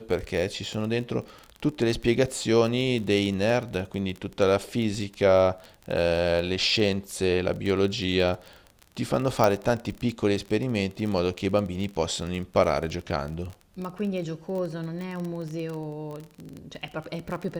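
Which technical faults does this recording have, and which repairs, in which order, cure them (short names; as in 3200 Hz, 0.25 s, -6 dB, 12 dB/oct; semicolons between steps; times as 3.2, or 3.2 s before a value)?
crackle 28/s -30 dBFS
9.44 pop -9 dBFS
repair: de-click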